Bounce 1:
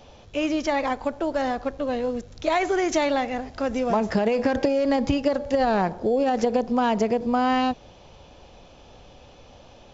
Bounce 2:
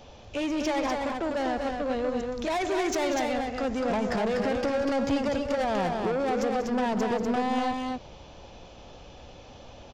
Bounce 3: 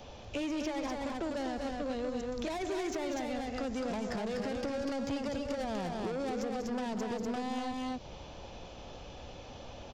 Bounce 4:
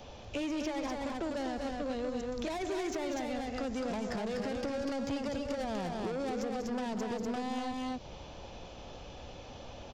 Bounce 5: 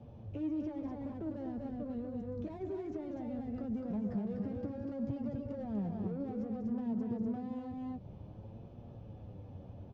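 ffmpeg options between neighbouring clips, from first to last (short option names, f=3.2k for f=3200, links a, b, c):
-filter_complex "[0:a]asoftclip=type=tanh:threshold=-25dB,asplit=2[a][b];[b]aecho=0:1:189.5|244.9:0.251|0.631[c];[a][c]amix=inputs=2:normalize=0"
-filter_complex "[0:a]acrossover=split=380|3600[a][b][c];[a]acompressor=threshold=-37dB:ratio=4[d];[b]acompressor=threshold=-40dB:ratio=4[e];[c]acompressor=threshold=-49dB:ratio=4[f];[d][e][f]amix=inputs=3:normalize=0"
-af anull
-af "flanger=delay=8.4:depth=2.3:regen=46:speed=0.57:shape=triangular,bandpass=f=130:t=q:w=1.4:csg=0,volume=10.5dB"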